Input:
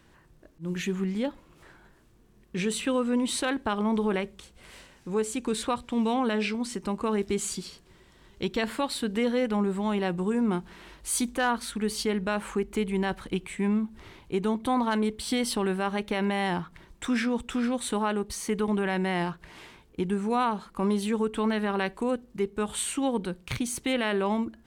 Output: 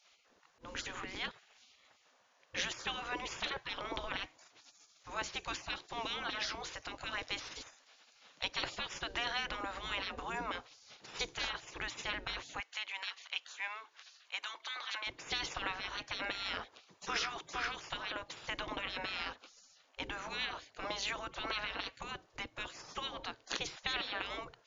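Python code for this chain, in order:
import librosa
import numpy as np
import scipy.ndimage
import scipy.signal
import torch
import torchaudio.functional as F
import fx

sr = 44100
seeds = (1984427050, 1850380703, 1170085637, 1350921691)

y = fx.brickwall_lowpass(x, sr, high_hz=7200.0)
y = fx.spec_gate(y, sr, threshold_db=-20, keep='weak')
y = fx.highpass(y, sr, hz=1200.0, slope=12, at=(12.6, 15.07))
y = y * 10.0 ** (4.0 / 20.0)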